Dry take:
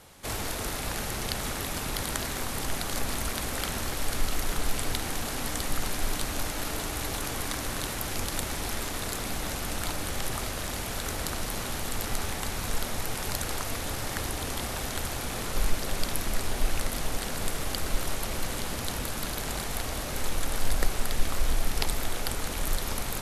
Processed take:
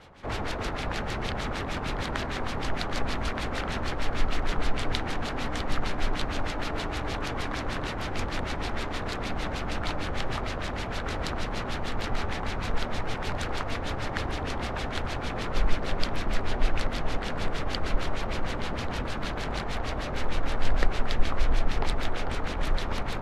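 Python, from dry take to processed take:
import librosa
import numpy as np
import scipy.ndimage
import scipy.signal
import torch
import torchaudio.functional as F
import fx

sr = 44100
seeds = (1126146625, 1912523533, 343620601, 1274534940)

y = fx.filter_lfo_lowpass(x, sr, shape='sine', hz=6.5, low_hz=990.0, high_hz=4300.0, q=1.0)
y = y * 10.0 ** (2.5 / 20.0)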